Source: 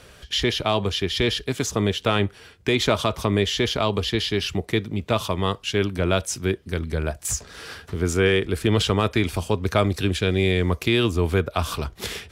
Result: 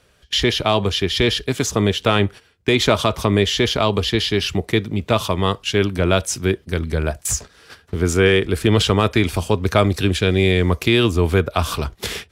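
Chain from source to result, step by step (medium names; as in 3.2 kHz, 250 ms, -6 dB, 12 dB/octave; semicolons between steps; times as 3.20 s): gate -35 dBFS, range -14 dB; trim +4.5 dB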